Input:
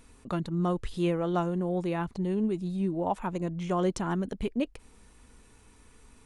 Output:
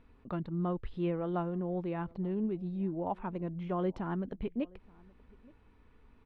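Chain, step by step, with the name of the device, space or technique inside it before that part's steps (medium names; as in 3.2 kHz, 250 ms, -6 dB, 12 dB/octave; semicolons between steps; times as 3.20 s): shout across a valley (distance through air 380 m; echo from a far wall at 150 m, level -25 dB); trim -4.5 dB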